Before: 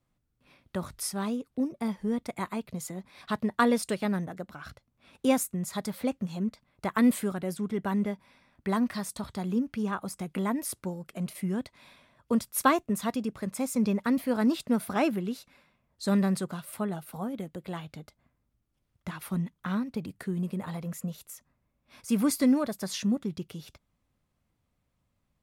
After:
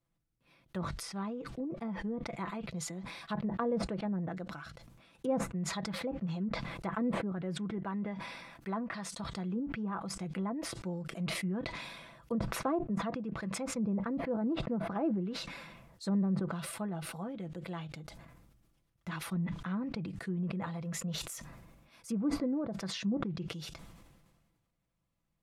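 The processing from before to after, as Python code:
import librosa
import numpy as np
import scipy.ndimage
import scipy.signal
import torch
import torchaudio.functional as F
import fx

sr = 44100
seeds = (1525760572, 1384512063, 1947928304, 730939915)

y = fx.low_shelf(x, sr, hz=210.0, db=-7.0, at=(7.78, 9.2))
y = fx.env_lowpass_down(y, sr, base_hz=720.0, full_db=-24.0)
y = y + 0.46 * np.pad(y, (int(6.0 * sr / 1000.0), 0))[:len(y)]
y = fx.sustainer(y, sr, db_per_s=36.0)
y = F.gain(torch.from_numpy(y), -7.0).numpy()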